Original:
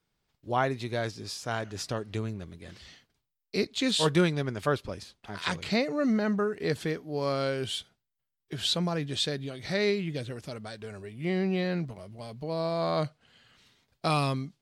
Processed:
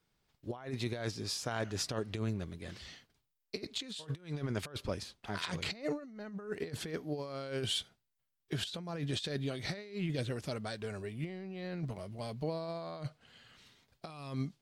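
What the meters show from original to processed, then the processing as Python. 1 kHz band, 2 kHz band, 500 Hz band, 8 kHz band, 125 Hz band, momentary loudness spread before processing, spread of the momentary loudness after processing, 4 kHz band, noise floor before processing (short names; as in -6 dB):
-12.5 dB, -9.0 dB, -10.0 dB, -4.5 dB, -6.0 dB, 15 LU, 10 LU, -7.0 dB, -83 dBFS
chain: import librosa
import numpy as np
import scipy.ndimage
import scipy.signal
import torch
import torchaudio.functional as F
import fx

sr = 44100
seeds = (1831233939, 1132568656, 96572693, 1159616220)

y = fx.over_compress(x, sr, threshold_db=-33.0, ratio=-0.5)
y = y * 10.0 ** (-4.0 / 20.0)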